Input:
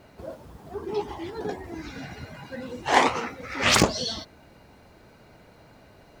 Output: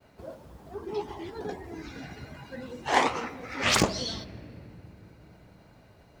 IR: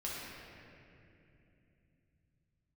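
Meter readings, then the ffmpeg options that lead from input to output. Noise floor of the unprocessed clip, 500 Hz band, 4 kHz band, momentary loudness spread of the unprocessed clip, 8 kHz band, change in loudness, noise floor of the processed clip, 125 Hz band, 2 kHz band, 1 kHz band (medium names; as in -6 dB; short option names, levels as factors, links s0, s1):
-54 dBFS, -4.0 dB, -4.0 dB, 21 LU, -4.0 dB, -4.0 dB, -57 dBFS, -3.0 dB, -4.0 dB, -4.0 dB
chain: -filter_complex "[0:a]agate=range=0.0224:threshold=0.00316:ratio=3:detection=peak,asplit=2[s0][s1];[1:a]atrim=start_sample=2205,lowshelf=f=440:g=11,adelay=67[s2];[s1][s2]afir=irnorm=-1:irlink=0,volume=0.075[s3];[s0][s3]amix=inputs=2:normalize=0,volume=0.631"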